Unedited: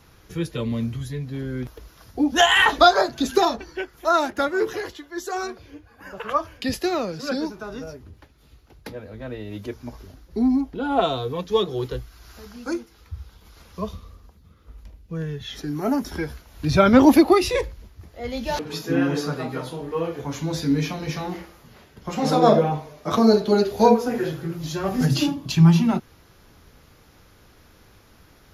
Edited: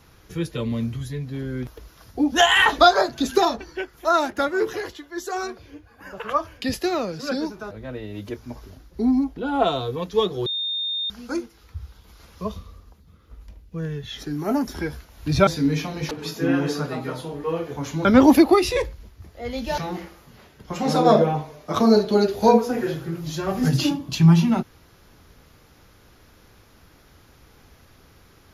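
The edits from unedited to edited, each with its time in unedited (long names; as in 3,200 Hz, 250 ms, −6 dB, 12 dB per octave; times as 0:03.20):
0:07.71–0:09.08: remove
0:11.83–0:12.47: beep over 3,650 Hz −23.5 dBFS
0:16.84–0:18.57: swap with 0:20.53–0:21.15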